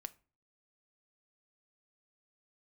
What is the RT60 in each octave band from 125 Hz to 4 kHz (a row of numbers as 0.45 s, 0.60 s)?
0.55 s, 0.45 s, 0.40 s, 0.35 s, 0.30 s, 0.25 s